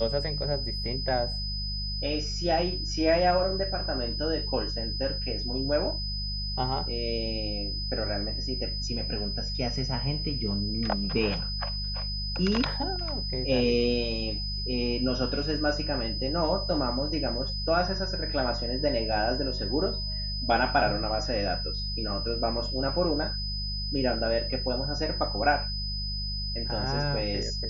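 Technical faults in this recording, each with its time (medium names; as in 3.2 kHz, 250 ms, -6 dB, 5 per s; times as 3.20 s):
hum 50 Hz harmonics 4 -34 dBFS
whine 5 kHz -33 dBFS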